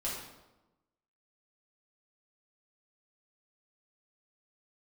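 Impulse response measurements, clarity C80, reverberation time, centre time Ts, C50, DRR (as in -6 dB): 4.5 dB, 1.0 s, 56 ms, 1.5 dB, -7.0 dB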